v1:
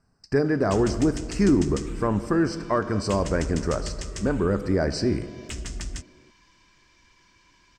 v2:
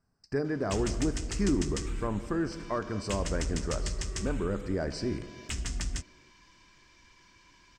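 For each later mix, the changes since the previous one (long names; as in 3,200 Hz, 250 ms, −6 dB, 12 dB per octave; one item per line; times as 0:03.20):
speech −8.5 dB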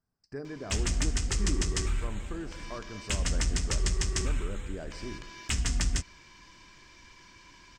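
speech −9.0 dB
background +5.5 dB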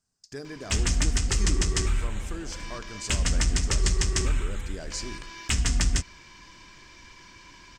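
speech: remove moving average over 13 samples
background +4.5 dB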